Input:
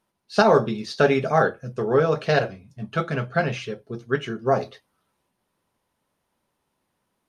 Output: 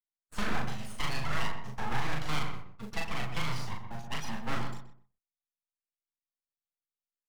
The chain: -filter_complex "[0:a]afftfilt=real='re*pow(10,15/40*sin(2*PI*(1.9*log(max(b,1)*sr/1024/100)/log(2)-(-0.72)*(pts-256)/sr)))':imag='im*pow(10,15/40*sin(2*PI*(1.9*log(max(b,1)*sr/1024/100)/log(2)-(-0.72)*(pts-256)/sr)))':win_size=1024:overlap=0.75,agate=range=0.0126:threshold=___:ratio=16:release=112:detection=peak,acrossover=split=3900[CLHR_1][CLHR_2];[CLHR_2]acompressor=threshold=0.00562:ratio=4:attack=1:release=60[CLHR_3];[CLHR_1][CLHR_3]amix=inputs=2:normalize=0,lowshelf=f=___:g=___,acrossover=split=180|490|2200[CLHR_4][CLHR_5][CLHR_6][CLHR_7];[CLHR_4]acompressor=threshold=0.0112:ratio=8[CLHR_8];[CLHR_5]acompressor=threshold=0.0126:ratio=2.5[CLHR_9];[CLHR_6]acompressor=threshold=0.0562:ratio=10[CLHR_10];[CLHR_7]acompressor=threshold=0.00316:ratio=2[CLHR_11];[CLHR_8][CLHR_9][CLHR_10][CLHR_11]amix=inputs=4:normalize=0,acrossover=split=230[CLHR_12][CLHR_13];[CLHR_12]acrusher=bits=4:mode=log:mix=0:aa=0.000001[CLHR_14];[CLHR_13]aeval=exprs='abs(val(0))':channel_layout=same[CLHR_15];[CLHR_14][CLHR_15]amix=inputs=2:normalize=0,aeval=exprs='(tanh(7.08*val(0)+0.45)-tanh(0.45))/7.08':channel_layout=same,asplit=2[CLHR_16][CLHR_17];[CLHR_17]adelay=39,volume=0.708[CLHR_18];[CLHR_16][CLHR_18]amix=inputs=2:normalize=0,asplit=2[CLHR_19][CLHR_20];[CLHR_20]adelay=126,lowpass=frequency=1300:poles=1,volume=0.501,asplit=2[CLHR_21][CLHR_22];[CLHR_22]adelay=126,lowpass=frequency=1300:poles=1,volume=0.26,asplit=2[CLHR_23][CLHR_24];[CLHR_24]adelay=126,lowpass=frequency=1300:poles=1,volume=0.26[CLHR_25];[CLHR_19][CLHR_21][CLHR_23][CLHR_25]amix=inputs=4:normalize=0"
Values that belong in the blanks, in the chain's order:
0.00891, 440, -6.5